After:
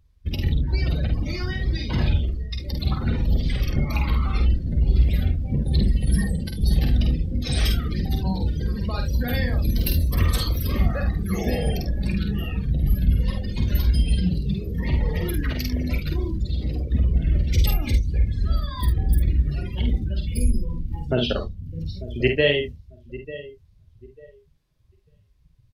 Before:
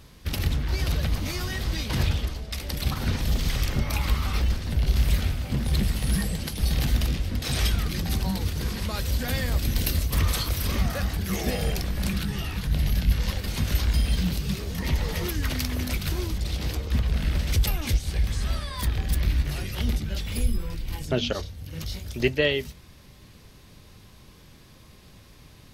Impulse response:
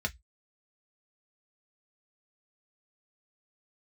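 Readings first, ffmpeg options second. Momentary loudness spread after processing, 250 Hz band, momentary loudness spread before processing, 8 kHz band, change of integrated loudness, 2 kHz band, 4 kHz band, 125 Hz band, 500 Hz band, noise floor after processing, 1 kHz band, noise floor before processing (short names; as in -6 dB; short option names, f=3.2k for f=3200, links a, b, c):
6 LU, +4.0 dB, 5 LU, -6.5 dB, +3.0 dB, 0.0 dB, -1.0 dB, +4.0 dB, +3.5 dB, -57 dBFS, -0.5 dB, -51 dBFS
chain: -filter_complex "[0:a]asplit=2[a][b];[b]aecho=0:1:894|1788|2682|3576:0.188|0.0735|0.0287|0.0112[c];[a][c]amix=inputs=2:normalize=0,afftdn=nr=29:nf=-32,asplit=2[d][e];[e]aecho=0:1:49|74:0.596|0.188[f];[d][f]amix=inputs=2:normalize=0,volume=2.5dB"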